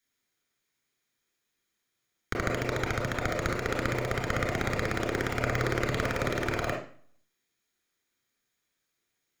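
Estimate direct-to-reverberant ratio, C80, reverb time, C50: -0.5 dB, 10.0 dB, 0.45 s, 3.5 dB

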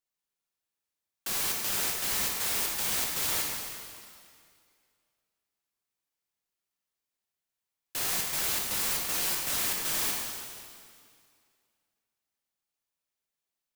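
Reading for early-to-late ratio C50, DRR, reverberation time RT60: 0.5 dB, -1.5 dB, 2.2 s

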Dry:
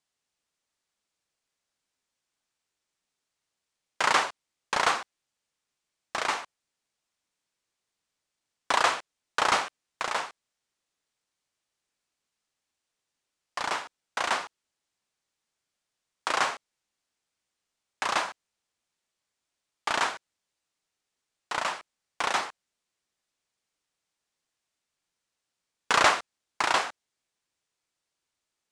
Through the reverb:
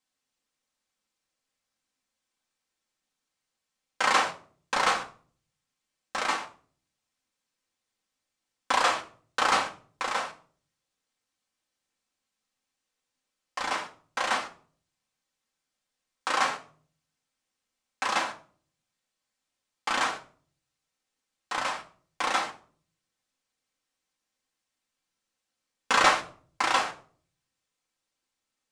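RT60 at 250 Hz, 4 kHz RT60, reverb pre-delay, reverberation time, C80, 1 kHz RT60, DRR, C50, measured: 0.65 s, 0.35 s, 4 ms, 0.45 s, 19.0 dB, 0.40 s, -0.5 dB, 14.0 dB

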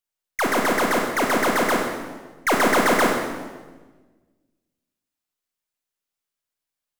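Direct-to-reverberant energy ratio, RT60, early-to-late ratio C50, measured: 1.0 dB, 1.4 s, 3.0 dB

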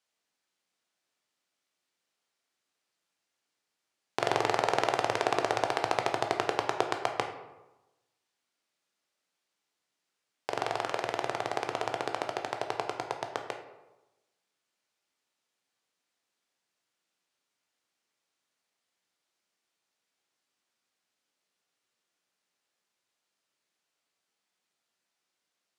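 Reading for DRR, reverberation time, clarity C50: 4.0 dB, 1.0 s, 7.5 dB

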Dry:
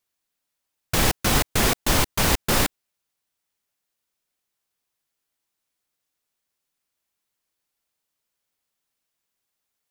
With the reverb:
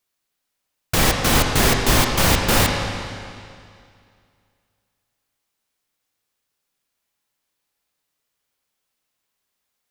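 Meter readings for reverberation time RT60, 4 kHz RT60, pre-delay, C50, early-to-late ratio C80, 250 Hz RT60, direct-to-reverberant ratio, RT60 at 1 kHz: 2.3 s, 2.2 s, 21 ms, 3.0 dB, 4.0 dB, 2.3 s, 1.5 dB, 2.3 s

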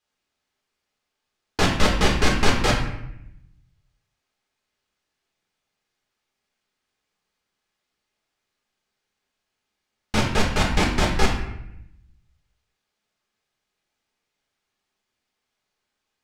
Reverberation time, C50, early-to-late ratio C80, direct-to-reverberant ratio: 0.80 s, 5.0 dB, 7.5 dB, -1.5 dB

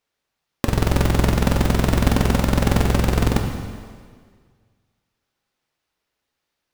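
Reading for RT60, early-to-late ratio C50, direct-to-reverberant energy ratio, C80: 1.8 s, 5.5 dB, 3.0 dB, 6.5 dB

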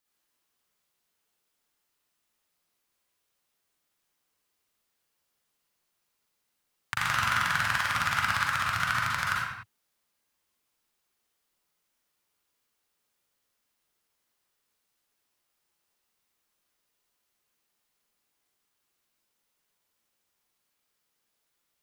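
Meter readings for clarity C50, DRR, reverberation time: -3.0 dB, -5.5 dB, no single decay rate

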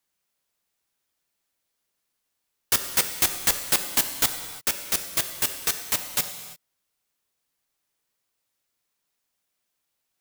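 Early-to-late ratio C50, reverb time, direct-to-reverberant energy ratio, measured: 8.5 dB, no single decay rate, 7.0 dB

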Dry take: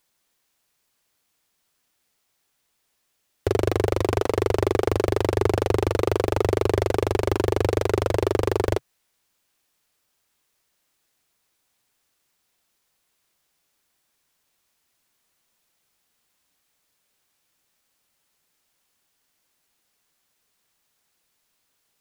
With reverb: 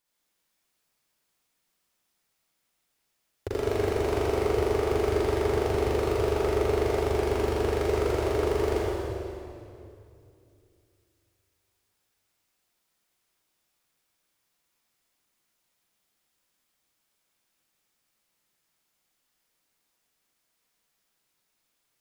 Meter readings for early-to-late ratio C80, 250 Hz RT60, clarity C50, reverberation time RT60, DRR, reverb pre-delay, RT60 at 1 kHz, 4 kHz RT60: -2.5 dB, 3.1 s, -5.0 dB, 2.6 s, -7.0 dB, 38 ms, 2.4 s, 2.2 s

